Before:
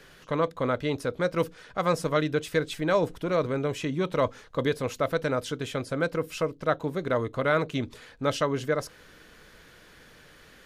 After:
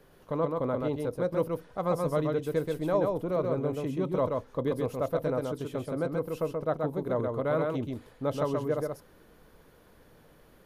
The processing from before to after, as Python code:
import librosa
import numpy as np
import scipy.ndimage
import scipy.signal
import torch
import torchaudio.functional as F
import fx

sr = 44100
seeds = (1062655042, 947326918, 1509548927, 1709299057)

p1 = fx.band_shelf(x, sr, hz=3400.0, db=-11.5, octaves=2.9)
p2 = p1 + fx.echo_single(p1, sr, ms=130, db=-3.5, dry=0)
y = p2 * 10.0 ** (-3.0 / 20.0)